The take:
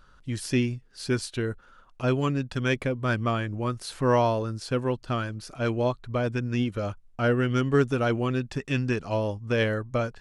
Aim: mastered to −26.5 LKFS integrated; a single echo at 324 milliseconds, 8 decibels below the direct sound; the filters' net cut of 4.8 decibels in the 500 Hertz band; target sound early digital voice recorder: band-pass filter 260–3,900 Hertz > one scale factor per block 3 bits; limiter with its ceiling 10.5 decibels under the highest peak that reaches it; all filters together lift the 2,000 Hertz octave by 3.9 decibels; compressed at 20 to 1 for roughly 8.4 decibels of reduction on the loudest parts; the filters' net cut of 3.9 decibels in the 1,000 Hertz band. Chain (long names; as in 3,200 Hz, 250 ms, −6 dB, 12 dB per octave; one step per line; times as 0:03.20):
parametric band 500 Hz −4 dB
parametric band 1,000 Hz −7.5 dB
parametric band 2,000 Hz +9 dB
downward compressor 20 to 1, threshold −27 dBFS
brickwall limiter −28.5 dBFS
band-pass filter 260–3,900 Hz
single-tap delay 324 ms −8 dB
one scale factor per block 3 bits
level +13.5 dB